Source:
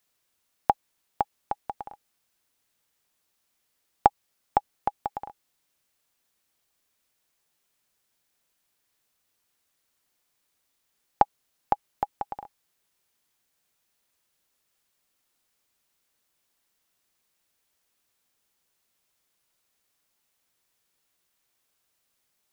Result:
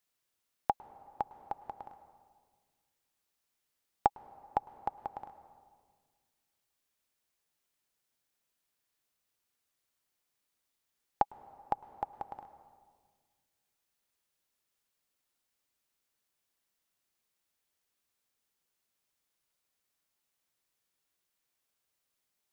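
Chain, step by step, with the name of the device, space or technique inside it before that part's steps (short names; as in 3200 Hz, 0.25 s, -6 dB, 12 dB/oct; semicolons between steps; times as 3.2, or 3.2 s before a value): compressed reverb return (on a send at -10.5 dB: reverb RT60 1.6 s, pre-delay 0.103 s + compressor 6:1, threshold -33 dBFS, peak gain reduction 12.5 dB); on the sum: gain -8 dB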